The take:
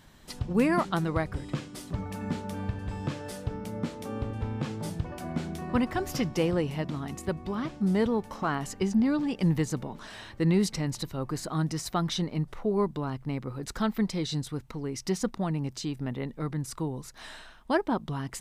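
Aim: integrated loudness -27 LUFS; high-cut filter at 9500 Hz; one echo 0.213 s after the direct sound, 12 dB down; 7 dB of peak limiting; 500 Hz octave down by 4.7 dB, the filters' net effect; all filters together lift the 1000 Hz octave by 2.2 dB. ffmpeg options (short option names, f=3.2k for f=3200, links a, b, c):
-af "lowpass=9.5k,equalizer=f=500:t=o:g=-7.5,equalizer=f=1k:t=o:g=5,alimiter=limit=-20dB:level=0:latency=1,aecho=1:1:213:0.251,volume=5.5dB"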